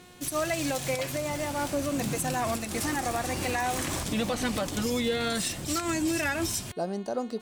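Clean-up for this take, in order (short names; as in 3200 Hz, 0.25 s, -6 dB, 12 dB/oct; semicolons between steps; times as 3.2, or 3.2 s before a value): de-hum 360.4 Hz, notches 12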